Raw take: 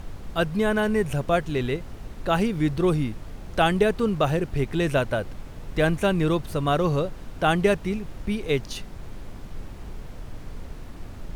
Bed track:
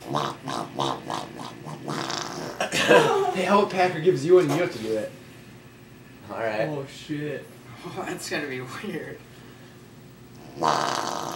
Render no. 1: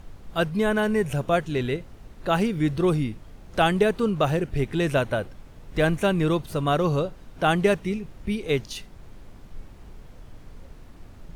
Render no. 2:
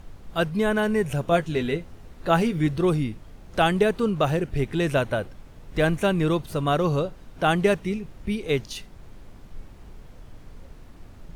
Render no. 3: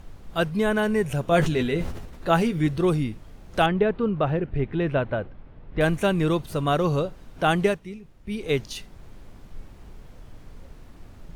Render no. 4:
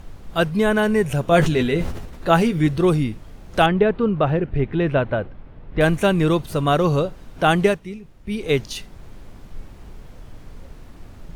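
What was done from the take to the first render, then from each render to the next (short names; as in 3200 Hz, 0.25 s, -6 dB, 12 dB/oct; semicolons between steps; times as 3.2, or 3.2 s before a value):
noise print and reduce 7 dB
1.3–2.67 doubler 12 ms -6.5 dB
1.28–2.28 sustainer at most 47 dB/s; 3.66–5.81 air absorption 390 m; 7.64–8.4 dip -10 dB, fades 0.15 s
gain +4.5 dB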